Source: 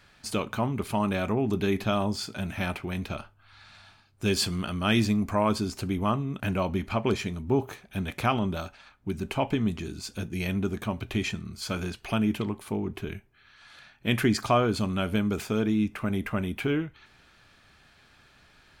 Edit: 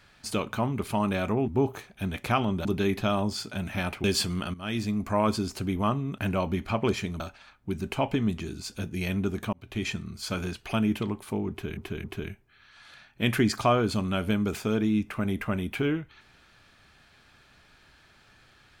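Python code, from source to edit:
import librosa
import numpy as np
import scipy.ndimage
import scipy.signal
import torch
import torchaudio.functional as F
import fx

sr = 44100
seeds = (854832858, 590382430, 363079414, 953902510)

y = fx.edit(x, sr, fx.cut(start_s=2.87, length_s=1.39),
    fx.fade_in_from(start_s=4.76, length_s=0.65, floor_db=-15.5),
    fx.move(start_s=7.42, length_s=1.17, to_s=1.48),
    fx.fade_in_span(start_s=10.92, length_s=0.37),
    fx.repeat(start_s=12.89, length_s=0.27, count=3), tone=tone)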